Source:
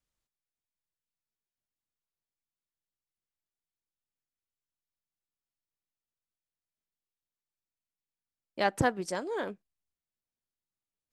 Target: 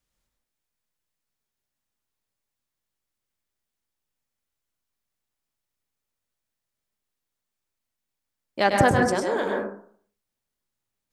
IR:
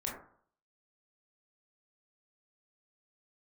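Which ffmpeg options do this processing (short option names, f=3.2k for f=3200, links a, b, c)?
-filter_complex "[0:a]asplit=2[a][b];[1:a]atrim=start_sample=2205,adelay=101[c];[b][c]afir=irnorm=-1:irlink=0,volume=-2.5dB[d];[a][d]amix=inputs=2:normalize=0,volume=6.5dB"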